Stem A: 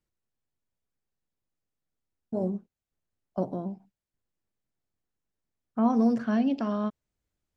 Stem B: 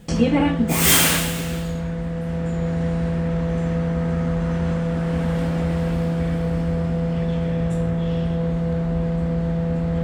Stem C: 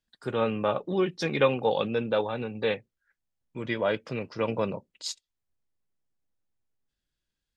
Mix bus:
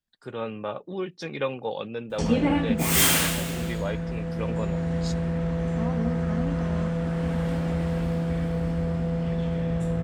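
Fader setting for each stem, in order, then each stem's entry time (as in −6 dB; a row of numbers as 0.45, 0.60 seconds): −9.0, −4.5, −5.5 decibels; 0.00, 2.10, 0.00 seconds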